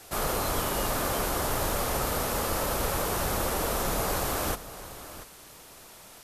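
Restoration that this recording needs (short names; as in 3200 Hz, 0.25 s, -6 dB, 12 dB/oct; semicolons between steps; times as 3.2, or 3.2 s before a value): denoiser 28 dB, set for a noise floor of -50 dBFS; inverse comb 0.688 s -14.5 dB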